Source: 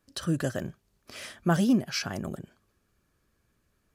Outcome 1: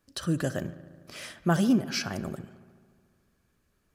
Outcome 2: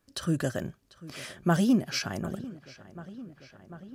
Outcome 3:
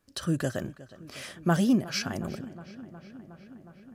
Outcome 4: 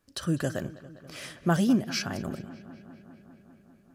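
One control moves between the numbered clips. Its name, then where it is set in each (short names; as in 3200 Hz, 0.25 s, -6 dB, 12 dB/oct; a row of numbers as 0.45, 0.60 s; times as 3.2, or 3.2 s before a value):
darkening echo, time: 72, 744, 363, 200 ms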